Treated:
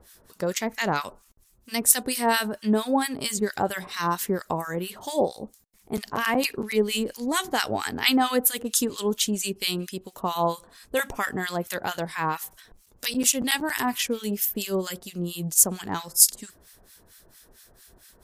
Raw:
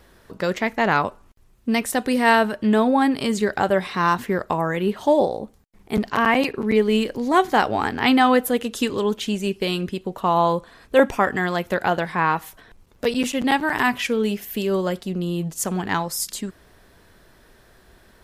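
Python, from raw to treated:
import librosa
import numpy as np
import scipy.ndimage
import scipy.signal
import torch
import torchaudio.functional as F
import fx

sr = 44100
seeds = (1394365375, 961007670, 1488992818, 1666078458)

y = fx.high_shelf(x, sr, hz=5300.0, db=5.5)
y = fx.harmonic_tremolo(y, sr, hz=4.4, depth_pct=100, crossover_hz=1200.0)
y = fx.bass_treble(y, sr, bass_db=0, treble_db=12)
y = y * 10.0 ** (-2.0 / 20.0)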